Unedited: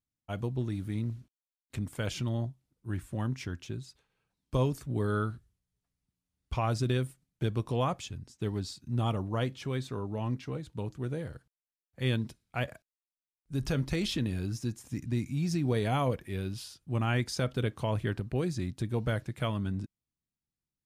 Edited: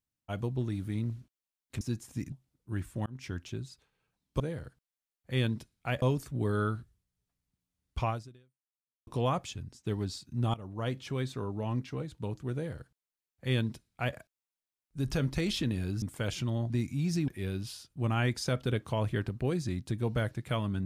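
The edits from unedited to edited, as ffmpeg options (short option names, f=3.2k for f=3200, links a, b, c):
-filter_complex "[0:a]asplit=11[a][b][c][d][e][f][g][h][i][j][k];[a]atrim=end=1.812[l];[b]atrim=start=14.568:end=15.082[m];[c]atrim=start=2.488:end=3.23,asetpts=PTS-STARTPTS,afade=t=out:st=0.738:d=0.004:c=hsin[n];[d]atrim=start=3.23:end=4.572,asetpts=PTS-STARTPTS,afade=t=in:d=0.27[o];[e]atrim=start=11.088:end=12.712[p];[f]atrim=start=4.568:end=7.62,asetpts=PTS-STARTPTS,afade=t=out:st=2.062:d=0.99:c=exp[q];[g]atrim=start=7.62:end=9.09,asetpts=PTS-STARTPTS,afade=t=in:d=0.004:c=hsin,afade=t=out:st=1.466:d=0.004:c=hsin:silence=0.11885[r];[h]atrim=start=9.09:end=14.572,asetpts=PTS-STARTPTS,afade=t=in:d=0.46:silence=0.11885[s];[i]atrim=start=1.808:end=2.492[t];[j]atrim=start=15.078:end=15.662[u];[k]atrim=start=16.188[v];[l][m]acrossfade=d=0.004:c1=hsin:c2=hsin[w];[n][o]concat=n=2:v=0:a=1[x];[w][x]acrossfade=d=0.004:c1=hsin:c2=hsin[y];[y][p]acrossfade=d=0.004:c1=hsin:c2=hsin[z];[q][r][s]concat=n=3:v=0:a=1[aa];[z][aa]acrossfade=d=0.004:c1=hsin:c2=hsin[ab];[ab][t]acrossfade=d=0.004:c1=hsin:c2=hsin[ac];[ac][u]acrossfade=d=0.004:c1=hsin:c2=hsin[ad];[ad][v]acrossfade=d=0.004:c1=hsin:c2=hsin"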